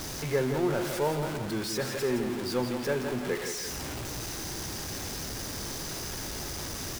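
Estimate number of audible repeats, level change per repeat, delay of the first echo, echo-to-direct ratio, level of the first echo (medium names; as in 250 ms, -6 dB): 2, -6.0 dB, 168 ms, -6.5 dB, -7.5 dB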